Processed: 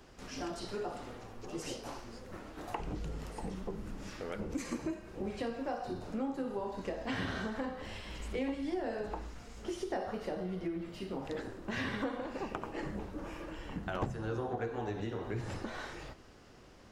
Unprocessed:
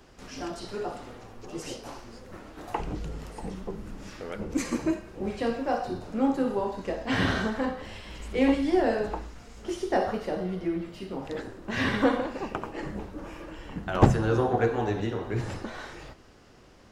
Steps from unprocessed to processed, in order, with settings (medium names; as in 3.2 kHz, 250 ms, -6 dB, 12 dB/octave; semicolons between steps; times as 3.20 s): compression 4:1, threshold -32 dBFS, peak gain reduction 17.5 dB; trim -2.5 dB